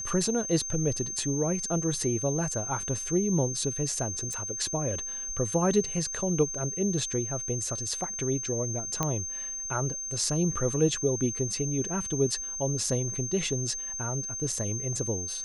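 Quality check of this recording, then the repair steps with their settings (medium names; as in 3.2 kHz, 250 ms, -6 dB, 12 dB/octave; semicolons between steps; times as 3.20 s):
whine 6.3 kHz -33 dBFS
4.33 s: pop
9.03 s: pop -12 dBFS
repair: de-click; band-stop 6.3 kHz, Q 30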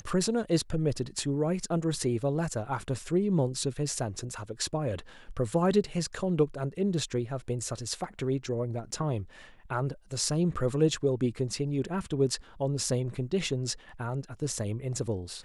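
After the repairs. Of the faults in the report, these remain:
nothing left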